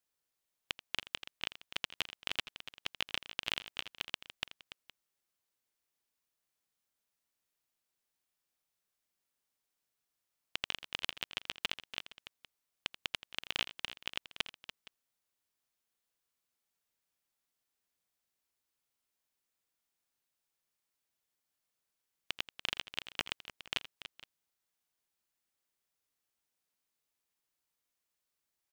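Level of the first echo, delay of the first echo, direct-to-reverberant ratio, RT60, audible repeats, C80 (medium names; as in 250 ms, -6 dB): -15.5 dB, 83 ms, no reverb, no reverb, 3, no reverb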